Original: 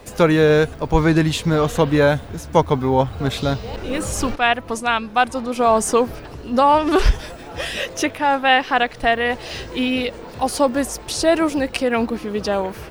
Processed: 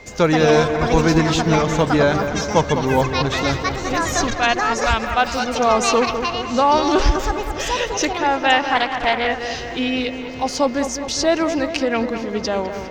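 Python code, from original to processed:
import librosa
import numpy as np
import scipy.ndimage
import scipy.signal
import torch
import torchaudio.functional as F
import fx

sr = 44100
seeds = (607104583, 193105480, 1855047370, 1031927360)

p1 = fx.echo_pitch(x, sr, ms=196, semitones=7, count=2, db_per_echo=-6.0)
p2 = fx.high_shelf_res(p1, sr, hz=7900.0, db=-9.0, q=3.0)
p3 = p2 + 10.0 ** (-41.0 / 20.0) * np.sin(2.0 * np.pi * 2100.0 * np.arange(len(p2)) / sr)
p4 = p3 + fx.echo_wet_lowpass(p3, sr, ms=204, feedback_pct=61, hz=2700.0, wet_db=-8.5, dry=0)
p5 = fx.doppler_dist(p4, sr, depth_ms=0.44, at=(8.75, 9.27))
y = p5 * librosa.db_to_amplitude(-1.5)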